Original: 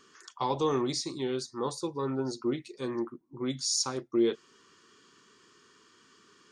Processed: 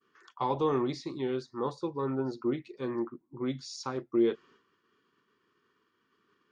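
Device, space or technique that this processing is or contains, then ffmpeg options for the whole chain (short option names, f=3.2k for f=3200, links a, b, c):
hearing-loss simulation: -af "lowpass=2.6k,agate=range=-33dB:threshold=-54dB:ratio=3:detection=peak"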